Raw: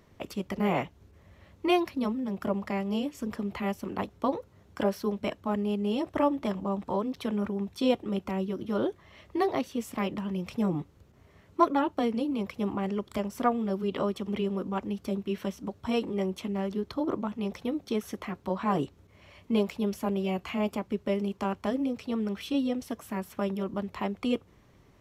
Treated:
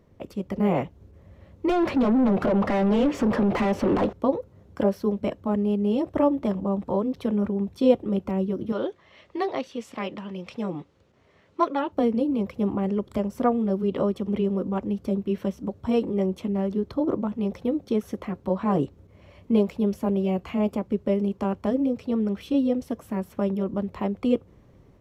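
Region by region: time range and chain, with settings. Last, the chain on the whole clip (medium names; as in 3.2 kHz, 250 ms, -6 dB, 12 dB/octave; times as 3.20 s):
1.69–4.13 s: compression 10:1, threshold -32 dBFS + treble shelf 8.4 kHz -11.5 dB + overdrive pedal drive 33 dB, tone 2 kHz, clips at -17.5 dBFS
8.72–11.92 s: low-pass 4 kHz + tilt EQ +4 dB/octave
whole clip: tilt shelf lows +5.5 dB, about 830 Hz; level rider gain up to 4 dB; peaking EQ 520 Hz +5 dB 0.27 oct; trim -3 dB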